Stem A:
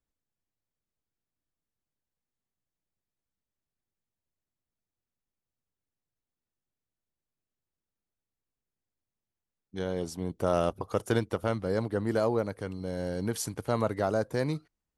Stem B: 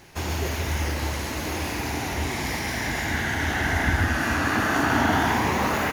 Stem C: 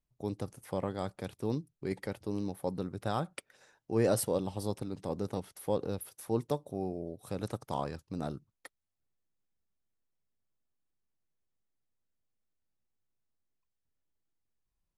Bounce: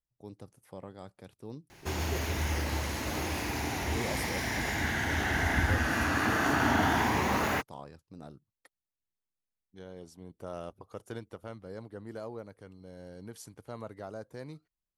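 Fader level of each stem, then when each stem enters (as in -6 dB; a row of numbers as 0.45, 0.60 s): -14.0, -5.0, -10.5 dB; 0.00, 1.70, 0.00 s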